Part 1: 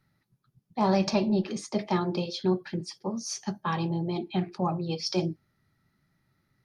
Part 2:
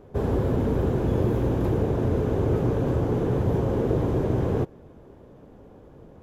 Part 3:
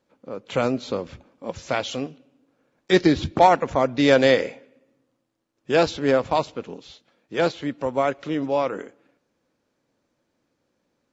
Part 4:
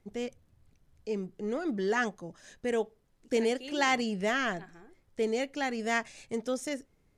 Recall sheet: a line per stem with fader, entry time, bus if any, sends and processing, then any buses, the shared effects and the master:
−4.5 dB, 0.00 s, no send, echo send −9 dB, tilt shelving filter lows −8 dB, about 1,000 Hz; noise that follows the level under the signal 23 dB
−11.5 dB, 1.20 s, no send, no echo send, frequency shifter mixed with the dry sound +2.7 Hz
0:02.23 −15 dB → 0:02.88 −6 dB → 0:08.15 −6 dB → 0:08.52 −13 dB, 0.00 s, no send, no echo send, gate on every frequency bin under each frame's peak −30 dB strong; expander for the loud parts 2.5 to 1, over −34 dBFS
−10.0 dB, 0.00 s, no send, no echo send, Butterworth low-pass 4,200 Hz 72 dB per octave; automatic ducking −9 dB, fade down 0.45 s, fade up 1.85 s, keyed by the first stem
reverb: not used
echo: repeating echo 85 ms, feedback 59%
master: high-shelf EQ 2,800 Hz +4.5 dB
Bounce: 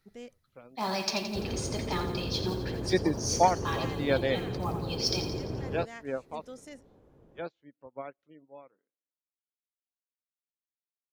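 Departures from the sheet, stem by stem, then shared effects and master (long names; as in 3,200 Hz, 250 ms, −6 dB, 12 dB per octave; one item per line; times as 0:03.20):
stem 2: missing frequency shifter mixed with the dry sound +2.7 Hz
stem 4: missing Butterworth low-pass 4,200 Hz 72 dB per octave
master: missing high-shelf EQ 2,800 Hz +4.5 dB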